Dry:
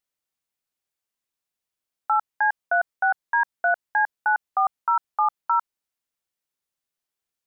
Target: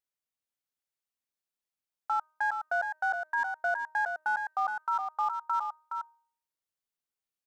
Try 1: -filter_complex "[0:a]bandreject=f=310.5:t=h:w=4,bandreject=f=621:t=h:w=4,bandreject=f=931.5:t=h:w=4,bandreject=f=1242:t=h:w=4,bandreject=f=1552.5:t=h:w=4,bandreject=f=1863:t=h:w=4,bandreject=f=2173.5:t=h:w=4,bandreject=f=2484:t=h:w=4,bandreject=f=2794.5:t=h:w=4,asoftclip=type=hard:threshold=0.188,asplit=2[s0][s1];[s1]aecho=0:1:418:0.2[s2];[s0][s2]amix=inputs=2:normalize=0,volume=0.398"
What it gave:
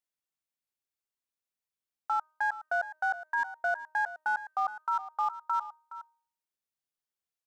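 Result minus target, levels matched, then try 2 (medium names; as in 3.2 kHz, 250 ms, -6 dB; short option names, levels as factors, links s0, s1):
echo-to-direct -8 dB
-filter_complex "[0:a]bandreject=f=310.5:t=h:w=4,bandreject=f=621:t=h:w=4,bandreject=f=931.5:t=h:w=4,bandreject=f=1242:t=h:w=4,bandreject=f=1552.5:t=h:w=4,bandreject=f=1863:t=h:w=4,bandreject=f=2173.5:t=h:w=4,bandreject=f=2484:t=h:w=4,bandreject=f=2794.5:t=h:w=4,asoftclip=type=hard:threshold=0.188,asplit=2[s0][s1];[s1]aecho=0:1:418:0.501[s2];[s0][s2]amix=inputs=2:normalize=0,volume=0.398"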